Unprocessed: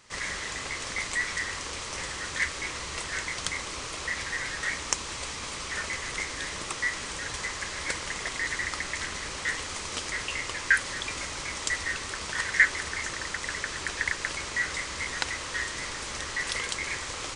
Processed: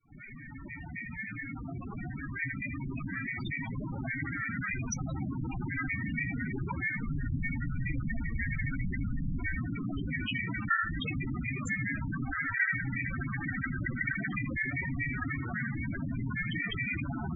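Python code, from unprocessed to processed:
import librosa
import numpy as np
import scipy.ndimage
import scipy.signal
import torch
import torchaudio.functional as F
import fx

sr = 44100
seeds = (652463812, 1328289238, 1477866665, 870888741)

y = fx.fade_in_head(x, sr, length_s=5.27)
y = scipy.signal.sosfilt(scipy.signal.butter(2, 8000.0, 'lowpass', fs=sr, output='sos'), y)
y = fx.notch(y, sr, hz=1900.0, q=12.0)
y = y * np.sin(2.0 * np.pi * 200.0 * np.arange(len(y)) / sr)
y = fx.low_shelf(y, sr, hz=300.0, db=7.5)
y = fx.echo_feedback(y, sr, ms=79, feedback_pct=22, wet_db=-8.5)
y = np.clip(y, -10.0 ** (-18.5 / 20.0), 10.0 ** (-18.5 / 20.0))
y = fx.low_shelf(y, sr, hz=90.0, db=9.0, at=(7.04, 9.58), fade=0.02)
y = fx.spec_topn(y, sr, count=8)
y = fx.env_flatten(y, sr, amount_pct=50)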